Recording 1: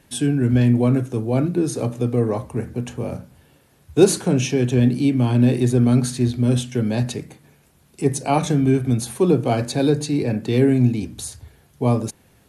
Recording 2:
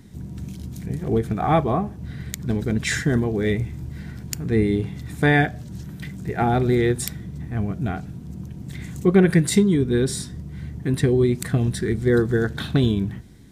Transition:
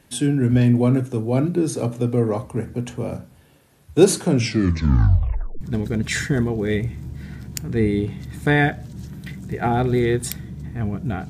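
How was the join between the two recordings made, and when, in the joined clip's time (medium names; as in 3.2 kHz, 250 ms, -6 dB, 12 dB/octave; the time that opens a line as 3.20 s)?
recording 1
4.31 s: tape stop 1.30 s
5.61 s: go over to recording 2 from 2.37 s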